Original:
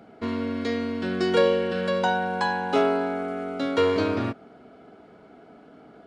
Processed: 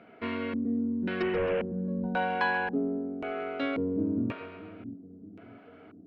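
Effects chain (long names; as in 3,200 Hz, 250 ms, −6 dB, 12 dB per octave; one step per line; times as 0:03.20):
0:01.22–0:01.78: linear delta modulator 16 kbit/s, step −37 dBFS
low-shelf EQ 230 Hz −5.5 dB
echo with a time of its own for lows and highs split 360 Hz, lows 628 ms, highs 134 ms, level −12 dB
auto-filter low-pass square 0.93 Hz 240–2,500 Hz
notch filter 810 Hz, Q 12
level −3.5 dB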